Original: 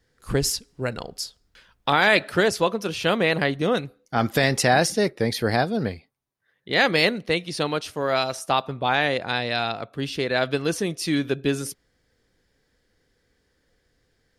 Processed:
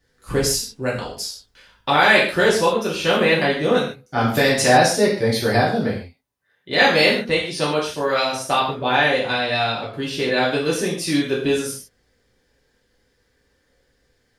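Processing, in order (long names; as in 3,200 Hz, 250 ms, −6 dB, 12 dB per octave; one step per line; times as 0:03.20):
reverb whose tail is shaped and stops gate 180 ms falling, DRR −6 dB
level −2.5 dB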